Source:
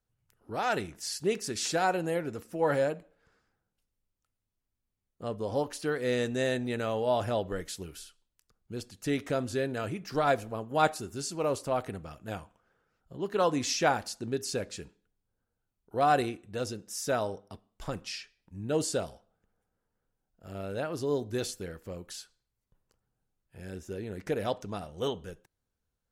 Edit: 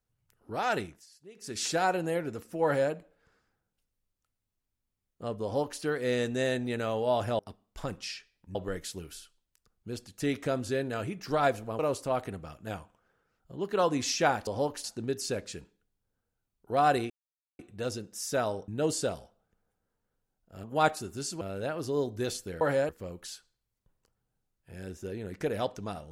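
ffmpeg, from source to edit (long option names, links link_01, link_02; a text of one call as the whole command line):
ffmpeg -i in.wav -filter_complex "[0:a]asplit=14[link_01][link_02][link_03][link_04][link_05][link_06][link_07][link_08][link_09][link_10][link_11][link_12][link_13][link_14];[link_01]atrim=end=1.06,asetpts=PTS-STARTPTS,afade=type=out:start_time=0.8:duration=0.26:silence=0.0749894[link_15];[link_02]atrim=start=1.06:end=1.35,asetpts=PTS-STARTPTS,volume=-22.5dB[link_16];[link_03]atrim=start=1.35:end=7.392,asetpts=PTS-STARTPTS,afade=type=in:duration=0.26:silence=0.0749894[link_17];[link_04]atrim=start=17.428:end=18.592[link_18];[link_05]atrim=start=7.388:end=10.632[link_19];[link_06]atrim=start=11.398:end=14.082[link_20];[link_07]atrim=start=5.428:end=5.802[link_21];[link_08]atrim=start=14.078:end=16.34,asetpts=PTS-STARTPTS,afade=type=out:start_time=2.258:duration=0.004:curve=hsin,apad=pad_dur=0.49[link_22];[link_09]atrim=start=16.34:end=17.432,asetpts=PTS-STARTPTS,afade=type=in:duration=0.004:curve=hsin[link_23];[link_10]atrim=start=18.588:end=20.552[link_24];[link_11]atrim=start=10.628:end=11.402[link_25];[link_12]atrim=start=20.548:end=21.752[link_26];[link_13]atrim=start=2.638:end=2.922[link_27];[link_14]atrim=start=21.748[link_28];[link_15][link_16][link_17]concat=n=3:v=0:a=1[link_29];[link_29][link_18]acrossfade=duration=0.004:curve1=hsin:curve2=hsin[link_30];[link_30][link_19]acrossfade=duration=0.004:curve1=hsin:curve2=hsin[link_31];[link_31][link_20]acrossfade=duration=0.004:curve1=hsin:curve2=hsin[link_32];[link_32][link_21]acrossfade=duration=0.004:curve1=hsin:curve2=hsin[link_33];[link_22][link_23]concat=n=2:v=0:a=1[link_34];[link_33][link_34]acrossfade=duration=0.004:curve1=hsin:curve2=hsin[link_35];[link_35][link_24]acrossfade=duration=0.004:curve1=hsin:curve2=hsin[link_36];[link_36][link_25]acrossfade=duration=0.004:curve1=hsin:curve2=hsin[link_37];[link_37][link_26]acrossfade=duration=0.004:curve1=hsin:curve2=hsin[link_38];[link_38][link_27]acrossfade=duration=0.004:curve1=hsin:curve2=hsin[link_39];[link_39][link_28]acrossfade=duration=0.004:curve1=hsin:curve2=hsin" out.wav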